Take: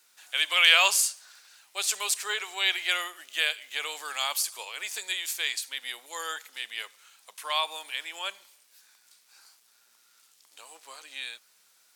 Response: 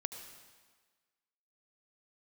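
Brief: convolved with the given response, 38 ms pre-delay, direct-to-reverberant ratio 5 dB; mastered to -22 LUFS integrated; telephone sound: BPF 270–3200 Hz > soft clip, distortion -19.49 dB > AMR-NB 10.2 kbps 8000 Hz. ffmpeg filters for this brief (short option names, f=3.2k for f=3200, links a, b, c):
-filter_complex "[0:a]asplit=2[a][b];[1:a]atrim=start_sample=2205,adelay=38[c];[b][c]afir=irnorm=-1:irlink=0,volume=-4.5dB[d];[a][d]amix=inputs=2:normalize=0,highpass=270,lowpass=3.2k,asoftclip=threshold=-10dB,volume=8.5dB" -ar 8000 -c:a libopencore_amrnb -b:a 10200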